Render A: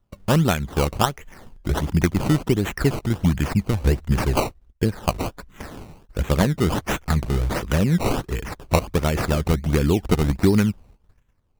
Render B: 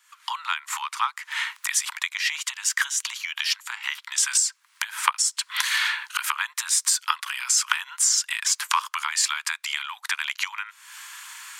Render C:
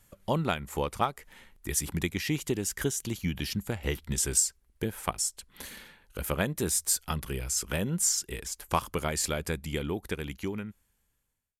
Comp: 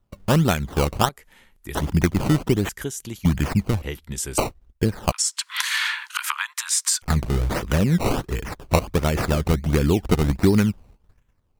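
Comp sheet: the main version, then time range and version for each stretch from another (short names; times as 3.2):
A
1.09–1.75 from C
2.69–3.25 from C
3.82–4.38 from C
5.12–7.02 from B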